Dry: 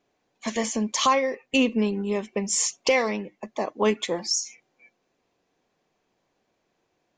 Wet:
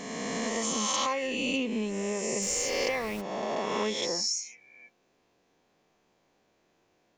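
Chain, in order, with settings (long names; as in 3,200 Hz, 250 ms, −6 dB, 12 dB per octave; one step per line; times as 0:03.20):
peak hold with a rise ahead of every peak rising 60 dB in 1.60 s
0:00.62–0:01.27: high-shelf EQ 7,200 Hz +8.5 dB
0:02.41–0:03.20: background noise pink −38 dBFS
downward compressor 2.5 to 1, threshold −32 dBFS, peak gain reduction 12.5 dB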